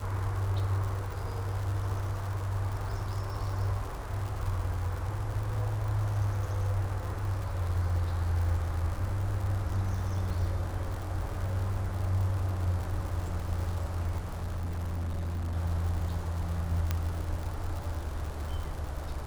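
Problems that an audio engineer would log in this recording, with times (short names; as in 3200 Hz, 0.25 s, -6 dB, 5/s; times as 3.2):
crackle 160/s -36 dBFS
14.18–15.57 clipped -30 dBFS
16.91 pop -15 dBFS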